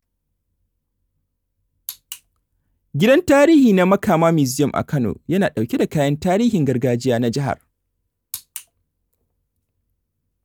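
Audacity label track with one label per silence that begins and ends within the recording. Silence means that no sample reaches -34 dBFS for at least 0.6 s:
2.160000	2.940000	silence
7.550000	8.340000	silence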